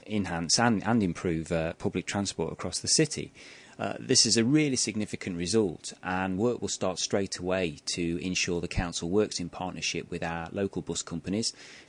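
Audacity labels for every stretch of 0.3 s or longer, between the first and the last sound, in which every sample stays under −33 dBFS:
3.260000	3.790000	silence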